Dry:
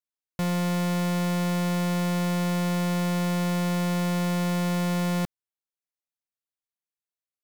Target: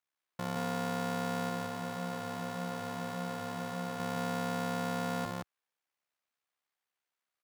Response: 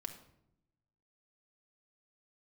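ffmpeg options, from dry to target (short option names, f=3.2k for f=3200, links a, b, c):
-filter_complex "[0:a]aeval=exprs='if(lt(val(0),0),0.708*val(0),val(0))':c=same,highpass=78,equalizer=f=1.3k:w=0.31:g=14,alimiter=limit=-16dB:level=0:latency=1:release=161,asoftclip=type=tanh:threshold=-23.5dB,asettb=1/sr,asplit=3[a][b][c];[a]atrim=end=1.494[d];[b]atrim=start=1.49:end=4,asetpts=PTS-STARTPTS,afade=t=in:d=0.004:c=qsin,afade=t=out:st=2.506:d=0.004:c=qsin,flanger=delay=7:depth=3.4:regen=-46:speed=1.7:shape=sinusoidal[e];[c]atrim=start=3.996[f];[d][e]acrossfade=d=0.004:c1=hsin:c2=qsin[g];[g][f]acrossfade=d=0.004:c1=qsin:c2=hsin,tremolo=f=68:d=0.889,aecho=1:1:61.22|172:0.355|0.794"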